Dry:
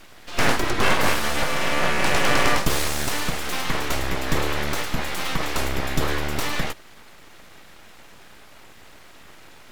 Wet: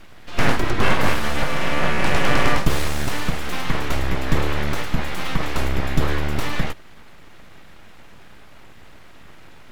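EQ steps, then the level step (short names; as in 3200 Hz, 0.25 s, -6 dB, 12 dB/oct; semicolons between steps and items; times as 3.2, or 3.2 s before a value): tone controls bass +6 dB, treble -6 dB; 0.0 dB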